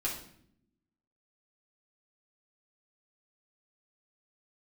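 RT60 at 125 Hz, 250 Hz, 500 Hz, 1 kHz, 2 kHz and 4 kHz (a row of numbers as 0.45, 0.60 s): 1.1, 1.2, 0.75, 0.60, 0.60, 0.55 s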